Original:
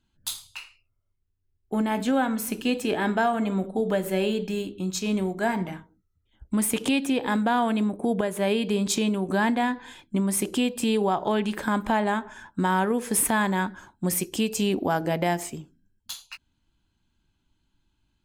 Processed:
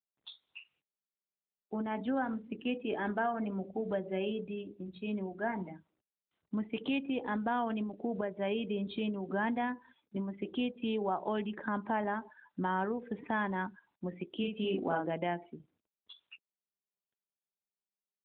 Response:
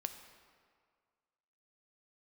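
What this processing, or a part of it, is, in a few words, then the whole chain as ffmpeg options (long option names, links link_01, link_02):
mobile call with aggressive noise cancelling: -filter_complex "[0:a]asplit=3[link_01][link_02][link_03];[link_01]afade=type=out:start_time=14.37:duration=0.02[link_04];[link_02]asplit=2[link_05][link_06];[link_06]adelay=47,volume=-3.5dB[link_07];[link_05][link_07]amix=inputs=2:normalize=0,afade=type=in:start_time=14.37:duration=0.02,afade=type=out:start_time=15.05:duration=0.02[link_08];[link_03]afade=type=in:start_time=15.05:duration=0.02[link_09];[link_04][link_08][link_09]amix=inputs=3:normalize=0,highpass=170,afftdn=noise_reduction=19:noise_floor=-36,volume=-8.5dB" -ar 8000 -c:a libopencore_amrnb -b:a 12200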